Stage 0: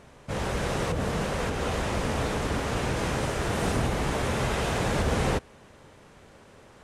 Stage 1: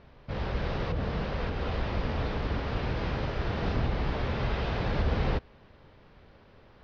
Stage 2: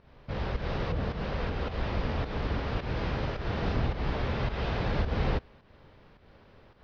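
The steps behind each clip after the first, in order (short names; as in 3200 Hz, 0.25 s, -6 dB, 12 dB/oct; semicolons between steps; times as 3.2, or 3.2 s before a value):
steep low-pass 5000 Hz 48 dB/oct; low shelf 80 Hz +11 dB; gain -5.5 dB
pump 107 bpm, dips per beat 1, -10 dB, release 0.189 s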